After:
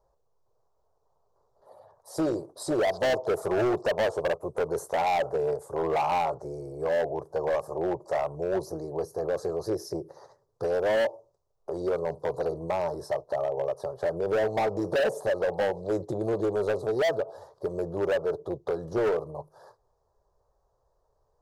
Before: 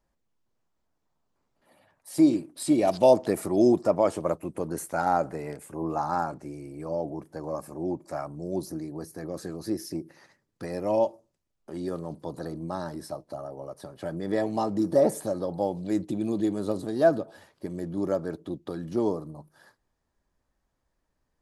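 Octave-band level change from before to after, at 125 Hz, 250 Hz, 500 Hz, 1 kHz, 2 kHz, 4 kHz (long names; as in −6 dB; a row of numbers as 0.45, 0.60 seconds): −2.5, −7.0, +1.0, +0.5, +7.5, +4.5 decibels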